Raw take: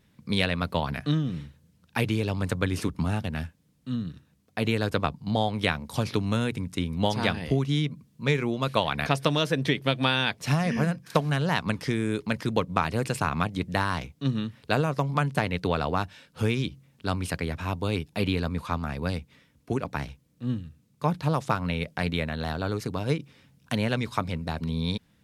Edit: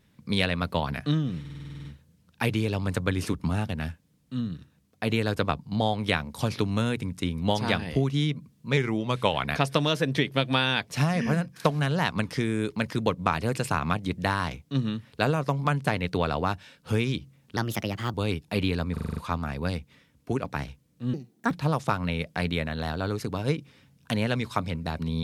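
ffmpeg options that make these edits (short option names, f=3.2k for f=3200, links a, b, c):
-filter_complex "[0:a]asplit=22[a][b][c][d][e][f][g][h][i][j][k][l][m][n][o][p][q][r][s][t][u][v];[a]atrim=end=1.452[w];[b]atrim=start=1.398:end=1.452[x];[c]atrim=start=1.398:end=1.452[y];[d]atrim=start=1.398:end=1.452[z];[e]atrim=start=1.398:end=1.452[aa];[f]atrim=start=1.398:end=1.452[ab];[g]atrim=start=1.398:end=1.452[ac];[h]atrim=start=1.398:end=1.452[ad];[i]atrim=start=1.398:end=1.452[ae];[j]atrim=start=1.398:end=8.324[af];[k]atrim=start=8.32:end=8.95,asetpts=PTS-STARTPTS,asetrate=41013,aresample=44100,atrim=end_sample=29874,asetpts=PTS-STARTPTS[ag];[l]atrim=start=8.946:end=17.074[ah];[m]atrim=start=17.07:end=17.78,asetpts=PTS-STARTPTS,asetrate=55125,aresample=44100[ai];[n]atrim=start=17.776:end=18.612[aj];[o]atrim=start=18.568:end=18.612[ak];[p]atrim=start=18.568:end=18.612[al];[q]atrim=start=18.568:end=18.612[am];[r]atrim=start=18.568:end=18.612[an];[s]atrim=start=18.568:end=18.612[ao];[t]atrim=start=18.568:end=20.544[ap];[u]atrim=start=20.54:end=21.12,asetpts=PTS-STARTPTS,asetrate=68796,aresample=44100,atrim=end_sample=16396,asetpts=PTS-STARTPTS[aq];[v]atrim=start=21.116[ar];[w][x]acrossfade=d=0.004:c1=hsin:c2=hsin[as];[as][y]acrossfade=d=0.004:c1=hsin:c2=hsin[at];[at][z]acrossfade=d=0.004:c1=hsin:c2=hsin[au];[au][aa]acrossfade=d=0.004:c1=hsin:c2=hsin[av];[av][ab]acrossfade=d=0.004:c1=hsin:c2=hsin[aw];[aw][ac]acrossfade=d=0.004:c1=hsin:c2=hsin[ax];[ax][ad]acrossfade=d=0.004:c1=hsin:c2=hsin[ay];[ay][ae]acrossfade=d=0.004:c1=hsin:c2=hsin[az];[az][af]acrossfade=d=0.004:c1=hsin:c2=hsin[ba];[ba][ag]acrossfade=d=0.004:c1=hsin:c2=hsin[bb];[bb][ah]acrossfade=d=0.004:c1=hsin:c2=hsin[bc];[bc][ai]acrossfade=d=0.004:c1=hsin:c2=hsin[bd];[bd][aj]acrossfade=d=0.004:c1=hsin:c2=hsin[be];[be][ak]acrossfade=d=0.004:c1=hsin:c2=hsin[bf];[bf][al]acrossfade=d=0.004:c1=hsin:c2=hsin[bg];[bg][am]acrossfade=d=0.004:c1=hsin:c2=hsin[bh];[bh][an]acrossfade=d=0.004:c1=hsin:c2=hsin[bi];[bi][ao]acrossfade=d=0.004:c1=hsin:c2=hsin[bj];[bj][ap]acrossfade=d=0.004:c1=hsin:c2=hsin[bk];[bk][aq]acrossfade=d=0.004:c1=hsin:c2=hsin[bl];[bl][ar]acrossfade=d=0.004:c1=hsin:c2=hsin"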